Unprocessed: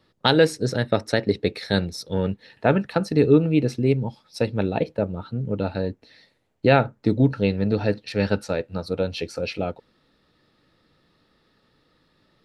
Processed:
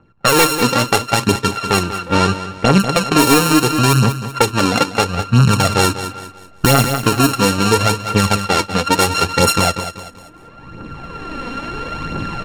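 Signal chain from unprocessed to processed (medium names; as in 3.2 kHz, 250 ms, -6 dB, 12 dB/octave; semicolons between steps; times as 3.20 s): sorted samples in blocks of 32 samples; recorder AGC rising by 15 dB/s; treble shelf 5.1 kHz +10 dB; level-controlled noise filter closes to 1.6 kHz, open at -12.5 dBFS; hard clipper -8 dBFS, distortion -13 dB; phaser 0.74 Hz, delay 4.2 ms, feedback 54%; 1.83–2.80 s: distance through air 90 m; on a send: feedback delay 193 ms, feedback 38%, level -13 dB; on the sum: loudness maximiser +8 dB; trim -1 dB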